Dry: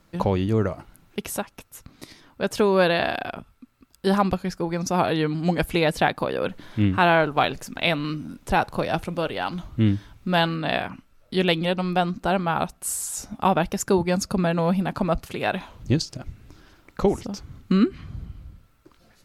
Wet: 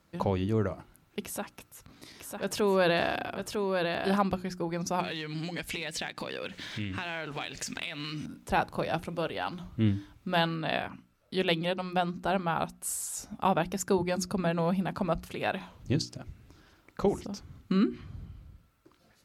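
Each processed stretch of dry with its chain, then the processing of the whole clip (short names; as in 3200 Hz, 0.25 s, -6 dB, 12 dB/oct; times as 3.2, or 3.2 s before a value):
1.21–4.16 transient shaper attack -3 dB, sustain +6 dB + echo 0.951 s -4.5 dB
5–8.26 band shelf 3800 Hz +11.5 dB 2.6 oct + compressor 16:1, threshold -28 dBFS + sample leveller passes 1
whole clip: HPF 43 Hz; notches 60/120/180/240/300/360 Hz; gain -6 dB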